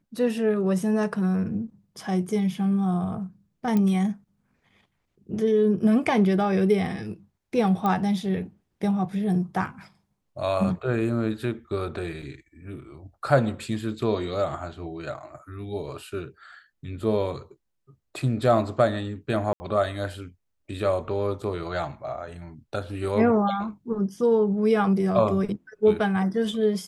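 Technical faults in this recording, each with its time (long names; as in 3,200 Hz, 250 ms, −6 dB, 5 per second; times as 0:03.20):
0:03.77: click −14 dBFS
0:07.86: click −14 dBFS
0:12.22: drop-out 4.8 ms
0:19.53–0:19.60: drop-out 70 ms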